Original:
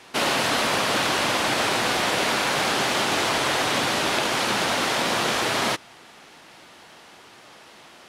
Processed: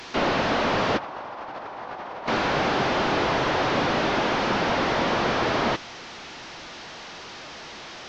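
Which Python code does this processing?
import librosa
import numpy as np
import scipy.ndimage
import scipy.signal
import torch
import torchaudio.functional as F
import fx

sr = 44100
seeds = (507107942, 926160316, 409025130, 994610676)

y = fx.delta_mod(x, sr, bps=32000, step_db=-36.5)
y = fx.peak_eq(y, sr, hz=900.0, db=13.5, octaves=1.9, at=(0.98, 2.27))
y = fx.over_compress(y, sr, threshold_db=-24.0, ratio=-0.5)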